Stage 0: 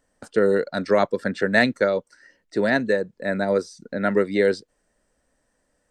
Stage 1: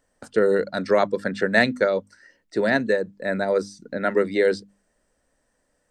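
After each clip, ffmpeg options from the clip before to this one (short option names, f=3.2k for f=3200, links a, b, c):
-af "bandreject=f=50:t=h:w=6,bandreject=f=100:t=h:w=6,bandreject=f=150:t=h:w=6,bandreject=f=200:t=h:w=6,bandreject=f=250:t=h:w=6,bandreject=f=300:t=h:w=6"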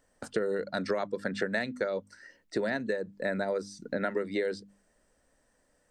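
-af "acompressor=threshold=-27dB:ratio=10"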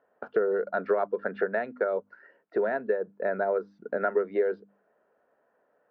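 -af "highpass=250,equalizer=f=280:t=q:w=4:g=-5,equalizer=f=420:t=q:w=4:g=8,equalizer=f=690:t=q:w=4:g=7,equalizer=f=980:t=q:w=4:g=3,equalizer=f=1.4k:t=q:w=4:g=6,equalizer=f=2k:t=q:w=4:g=-7,lowpass=f=2.2k:w=0.5412,lowpass=f=2.2k:w=1.3066"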